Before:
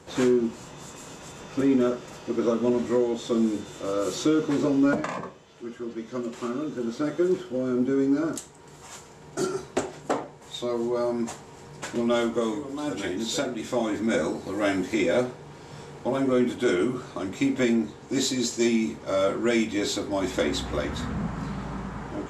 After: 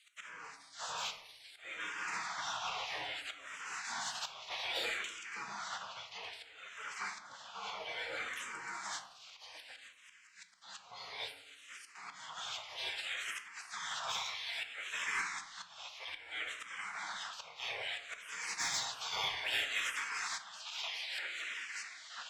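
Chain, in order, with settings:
delay that plays each chunk backwards 642 ms, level −6.5 dB
gate on every frequency bin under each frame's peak −25 dB weak
low-pass filter 2,700 Hz 12 dB per octave
spectral tilt +4.5 dB per octave
hum removal 69.76 Hz, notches 16
volume swells 507 ms
soft clipping −32.5 dBFS, distortion −17 dB
on a send at −6 dB: convolution reverb RT60 0.90 s, pre-delay 4 ms
on the sum: frequency shifter mixed with the dry sound −0.61 Hz
level +6.5 dB

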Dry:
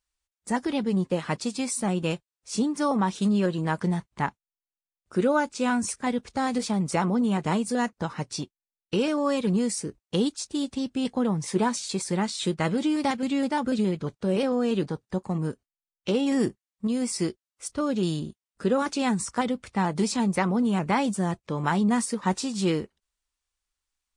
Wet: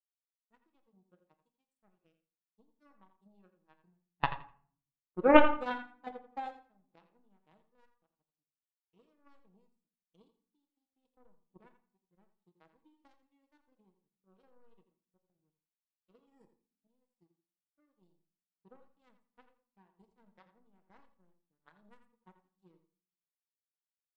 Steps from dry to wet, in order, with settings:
0:04.23–0:06.52: parametric band 740 Hz +11 dB 2.2 octaves
power curve on the samples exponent 3
repeating echo 84 ms, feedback 28%, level −9 dB
convolution reverb RT60 0.75 s, pre-delay 6 ms, DRR 6 dB
every bin expanded away from the loudest bin 1.5 to 1
level +2 dB

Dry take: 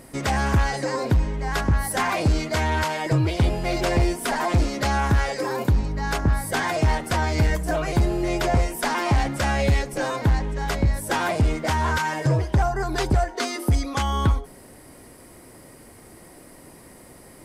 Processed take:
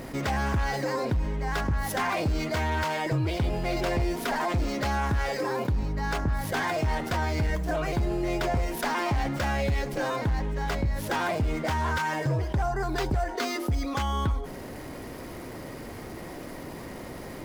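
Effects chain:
running median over 5 samples
envelope flattener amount 50%
level −8 dB

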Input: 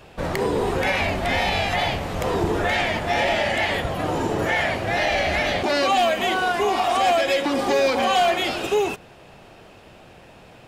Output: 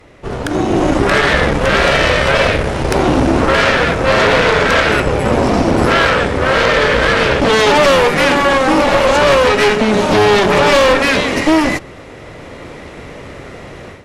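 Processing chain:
automatic gain control gain up to 12.5 dB
speed change −24%
harmonic generator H 4 −7 dB, 5 −14 dB, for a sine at −1 dBFS
level −3 dB

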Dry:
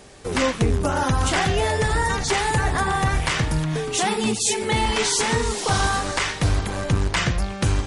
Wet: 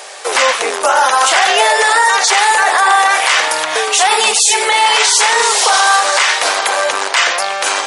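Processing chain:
high-pass filter 590 Hz 24 dB per octave
boost into a limiter +19 dB
level −1 dB

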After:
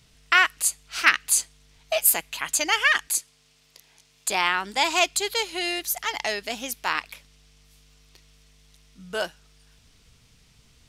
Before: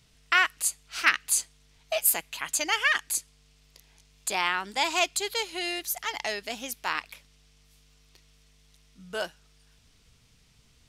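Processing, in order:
0:03.07–0:04.29: high-pass filter 290 Hz 6 dB per octave
level +4 dB

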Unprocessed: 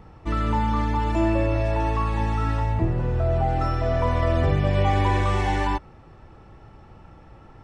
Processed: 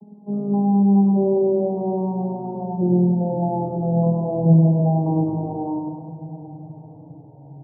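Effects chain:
vocoder with a gliding carrier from G#3, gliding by −7 semitones
Chebyshev low-pass filter 900 Hz, order 6
low-shelf EQ 220 Hz +10 dB
repeating echo 101 ms, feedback 43%, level −3.5 dB
convolution reverb RT60 5.7 s, pre-delay 6 ms, DRR 9.5 dB

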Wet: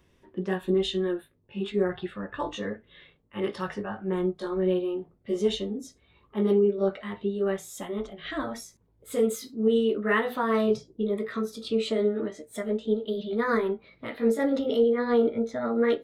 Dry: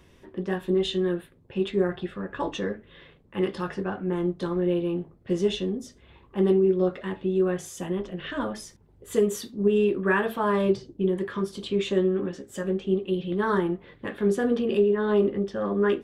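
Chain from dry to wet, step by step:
pitch glide at a constant tempo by +2.5 semitones starting unshifted
noise reduction from a noise print of the clip's start 8 dB

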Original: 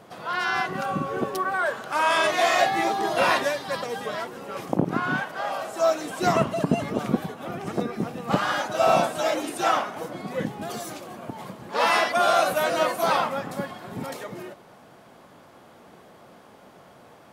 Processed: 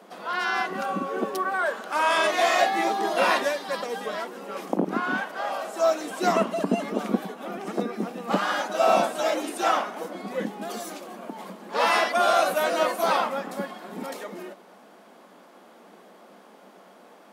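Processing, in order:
elliptic high-pass filter 190 Hz, stop band 40 dB

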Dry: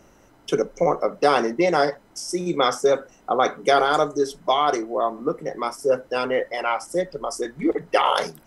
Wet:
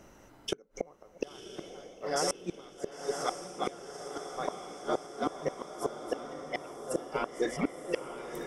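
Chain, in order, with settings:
feedback delay that plays each chunk backwards 496 ms, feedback 54%, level −11 dB
gate with flip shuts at −15 dBFS, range −34 dB
feedback delay with all-pass diffusion 1,018 ms, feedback 60%, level −8 dB
level −2 dB

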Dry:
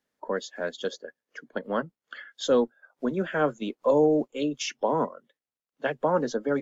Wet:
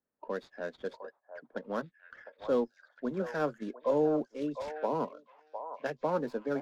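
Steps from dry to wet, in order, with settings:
running median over 15 samples
echo through a band-pass that steps 707 ms, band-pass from 810 Hz, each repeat 1.4 octaves, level −6 dB
low-pass that shuts in the quiet parts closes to 1,800 Hz, open at −23 dBFS
level −6.5 dB

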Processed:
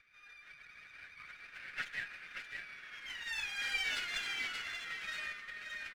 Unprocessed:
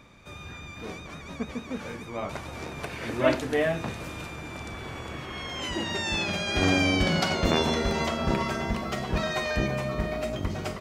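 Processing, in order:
adaptive Wiener filter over 9 samples
high-frequency loss of the air 80 metres
comb filter 4.8 ms, depth 33%
on a send: repeating echo 1,050 ms, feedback 24%, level −5.5 dB
on the sum: time stretch by phase vocoder 0.55×
Butterworth high-pass 1,500 Hz 48 dB per octave
high-shelf EQ 8,000 Hz −9.5 dB
windowed peak hold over 3 samples

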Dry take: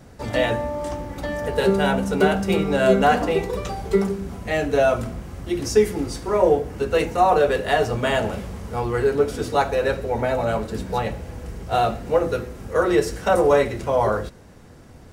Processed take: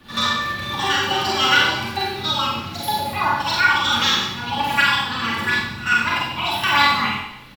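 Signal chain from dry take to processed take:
graphic EQ with 10 bands 250 Hz −10 dB, 500 Hz −4 dB, 1,000 Hz +6 dB, 2,000 Hz +9 dB, 4,000 Hz −6 dB
rotating-speaker cabinet horn 5 Hz, later 0.75 Hz, at 0:01.06
comb filter 7 ms, depth 30%
wrong playback speed 7.5 ips tape played at 15 ips
echo ahead of the sound 85 ms −17.5 dB
four-comb reverb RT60 0.84 s, combs from 31 ms, DRR −3.5 dB
level −1.5 dB

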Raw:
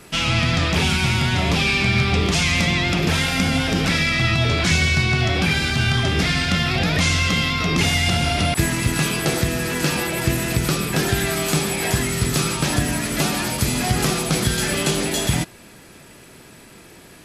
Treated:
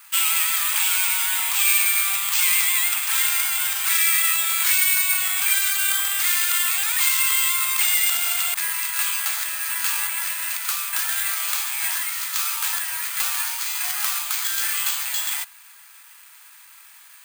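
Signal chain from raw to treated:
Butterworth high-pass 950 Hz 36 dB per octave
bad sample-rate conversion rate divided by 4×, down filtered, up zero stuff
level −3 dB

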